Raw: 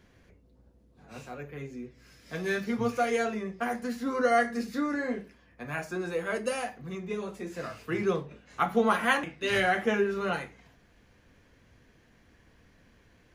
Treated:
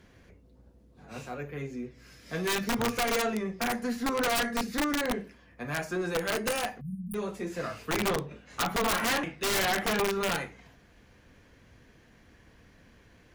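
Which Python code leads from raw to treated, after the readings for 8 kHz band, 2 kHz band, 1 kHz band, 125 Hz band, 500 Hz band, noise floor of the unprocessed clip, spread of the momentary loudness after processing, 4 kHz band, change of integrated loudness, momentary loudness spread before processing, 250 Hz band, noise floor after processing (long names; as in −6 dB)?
+10.5 dB, −0.5 dB, −1.0 dB, +1.5 dB, −2.0 dB, −62 dBFS, 12 LU, +7.0 dB, 0.0 dB, 17 LU, −0.5 dB, −59 dBFS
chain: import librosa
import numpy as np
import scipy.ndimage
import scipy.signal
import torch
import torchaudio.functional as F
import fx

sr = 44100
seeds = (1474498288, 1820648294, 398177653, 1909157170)

y = fx.cheby_harmonics(x, sr, harmonics=(3, 6, 7, 8), levels_db=(-8, -20, -15, -37), full_scale_db=-10.0)
y = (np.mod(10.0 ** (22.5 / 20.0) * y + 1.0, 2.0) - 1.0) / 10.0 ** (22.5 / 20.0)
y = fx.spec_erase(y, sr, start_s=6.81, length_s=0.34, low_hz=220.0, high_hz=8700.0)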